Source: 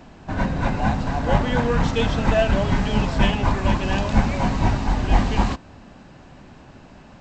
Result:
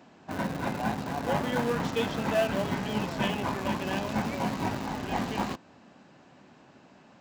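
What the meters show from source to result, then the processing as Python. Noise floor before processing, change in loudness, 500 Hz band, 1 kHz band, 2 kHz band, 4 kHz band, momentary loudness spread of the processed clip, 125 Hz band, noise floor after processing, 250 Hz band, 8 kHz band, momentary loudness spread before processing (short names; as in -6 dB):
-46 dBFS, -8.5 dB, -6.0 dB, -7.0 dB, -7.0 dB, -6.5 dB, 6 LU, -13.0 dB, -56 dBFS, -7.5 dB, n/a, 4 LU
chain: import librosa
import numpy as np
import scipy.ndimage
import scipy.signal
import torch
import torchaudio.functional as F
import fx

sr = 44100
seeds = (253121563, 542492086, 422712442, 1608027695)

p1 = fx.schmitt(x, sr, flips_db=-22.5)
p2 = x + (p1 * 10.0 ** (-6.0 / 20.0))
p3 = scipy.signal.sosfilt(scipy.signal.butter(2, 180.0, 'highpass', fs=sr, output='sos'), p2)
y = p3 * 10.0 ** (-8.0 / 20.0)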